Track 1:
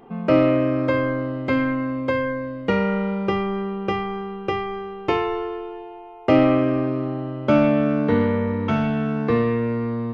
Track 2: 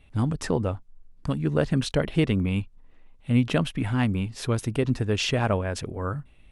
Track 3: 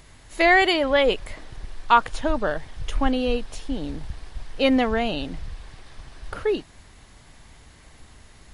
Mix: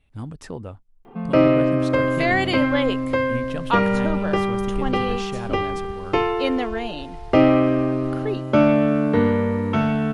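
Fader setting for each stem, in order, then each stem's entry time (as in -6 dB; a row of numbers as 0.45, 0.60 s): +1.0, -8.5, -4.5 dB; 1.05, 0.00, 1.80 s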